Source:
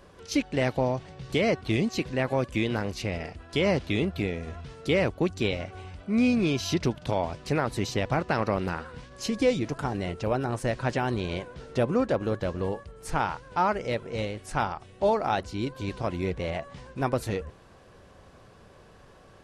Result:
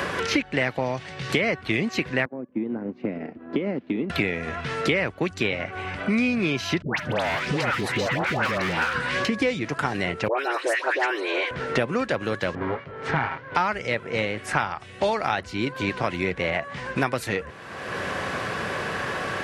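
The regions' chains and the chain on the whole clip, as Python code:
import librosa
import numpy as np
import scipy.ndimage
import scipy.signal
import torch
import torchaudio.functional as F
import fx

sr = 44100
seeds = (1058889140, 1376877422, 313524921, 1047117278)

y = fx.chain(x, sr, fx.ladder_bandpass(hz=290.0, resonance_pct=50),
    fx.transient(attack_db=4, sustain_db=-6), at=(2.25, 4.1))
y = fx.chain(y, sr, fx.clip_hard(threshold_db=-29.0),
    fx.dispersion(late='highs', ms=148.0, hz=1000.0),
    fx.band_squash(depth_pct=100), at=(6.82, 9.25))
y = fx.chain(y, sr, fx.brickwall_highpass(low_hz=290.0),
    fx.dispersion(late='highs', ms=112.0, hz=1800.0), at=(10.28, 11.51))
y = fx.chain(y, sr, fx.lower_of_two(delay_ms=7.4),
    fx.spacing_loss(db_at_10k=42),
    fx.notch(hz=2600.0, q=18.0), at=(12.55, 13.55))
y = scipy.signal.sosfilt(scipy.signal.butter(2, 94.0, 'highpass', fs=sr, output='sos'), y)
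y = fx.peak_eq(y, sr, hz=1900.0, db=11.0, octaves=1.5)
y = fx.band_squash(y, sr, depth_pct=100)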